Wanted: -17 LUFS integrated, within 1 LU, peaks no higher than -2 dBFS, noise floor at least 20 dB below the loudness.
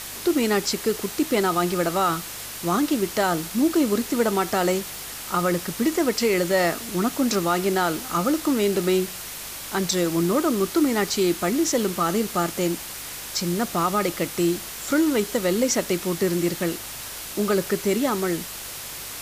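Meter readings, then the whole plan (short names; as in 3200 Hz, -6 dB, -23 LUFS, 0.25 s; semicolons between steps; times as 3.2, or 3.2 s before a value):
hum 50 Hz; harmonics up to 150 Hz; hum level -51 dBFS; noise floor -36 dBFS; noise floor target -44 dBFS; loudness -23.5 LUFS; peak -9.5 dBFS; loudness target -17.0 LUFS
-> de-hum 50 Hz, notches 3; noise print and reduce 8 dB; gain +6.5 dB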